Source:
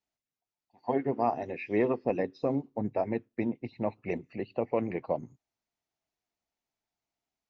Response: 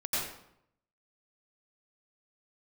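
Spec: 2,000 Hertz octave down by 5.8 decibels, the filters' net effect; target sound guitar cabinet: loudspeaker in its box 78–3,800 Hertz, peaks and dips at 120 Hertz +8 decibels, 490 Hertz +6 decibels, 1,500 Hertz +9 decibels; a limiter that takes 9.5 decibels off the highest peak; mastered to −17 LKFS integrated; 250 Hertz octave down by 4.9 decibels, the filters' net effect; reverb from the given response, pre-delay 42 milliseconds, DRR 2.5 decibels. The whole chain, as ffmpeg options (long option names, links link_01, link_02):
-filter_complex "[0:a]equalizer=frequency=250:width_type=o:gain=-7,equalizer=frequency=2000:width_type=o:gain=-9,alimiter=level_in=3dB:limit=-24dB:level=0:latency=1,volume=-3dB,asplit=2[link_01][link_02];[1:a]atrim=start_sample=2205,adelay=42[link_03];[link_02][link_03]afir=irnorm=-1:irlink=0,volume=-9.5dB[link_04];[link_01][link_04]amix=inputs=2:normalize=0,highpass=78,equalizer=frequency=120:width_type=q:width=4:gain=8,equalizer=frequency=490:width_type=q:width=4:gain=6,equalizer=frequency=1500:width_type=q:width=4:gain=9,lowpass=frequency=3800:width=0.5412,lowpass=frequency=3800:width=1.3066,volume=18.5dB"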